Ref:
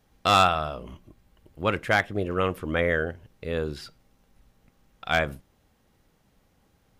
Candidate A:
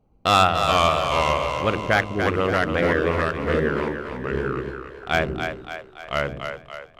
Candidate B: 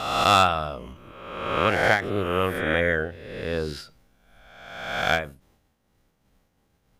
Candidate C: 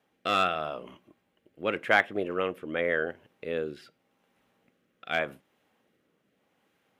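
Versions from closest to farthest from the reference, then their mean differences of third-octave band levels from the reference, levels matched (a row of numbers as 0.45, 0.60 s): C, B, A; 4.0, 6.0, 9.0 dB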